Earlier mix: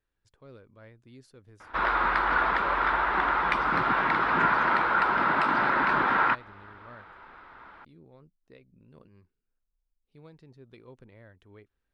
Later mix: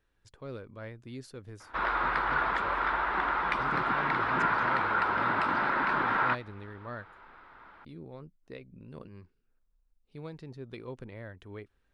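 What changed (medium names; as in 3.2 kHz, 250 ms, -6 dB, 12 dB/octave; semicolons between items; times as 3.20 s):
speech +8.5 dB; background -4.0 dB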